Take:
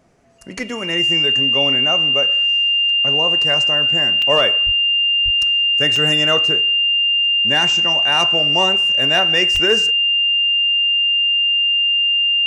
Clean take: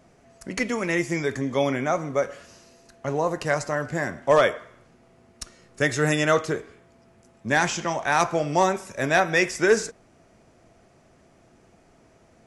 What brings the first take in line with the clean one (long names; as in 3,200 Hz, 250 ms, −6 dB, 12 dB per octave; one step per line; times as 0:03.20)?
notch filter 2,800 Hz, Q 30
0:04.65–0:04.77: high-pass filter 140 Hz 24 dB per octave
0:05.24–0:05.36: high-pass filter 140 Hz 24 dB per octave
0:09.53–0:09.65: high-pass filter 140 Hz 24 dB per octave
repair the gap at 0:04.22/0:05.96/0:09.56, 3.3 ms